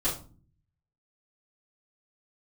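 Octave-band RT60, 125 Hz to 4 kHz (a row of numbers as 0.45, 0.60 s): 1.0, 0.75, 0.40, 0.35, 0.30, 0.25 s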